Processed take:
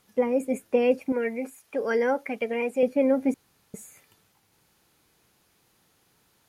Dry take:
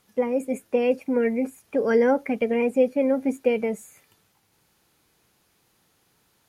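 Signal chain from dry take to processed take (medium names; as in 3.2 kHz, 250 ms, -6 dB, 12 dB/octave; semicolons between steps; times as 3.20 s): 1.12–2.83 s: bass shelf 410 Hz -11.5 dB; 3.34–3.74 s: room tone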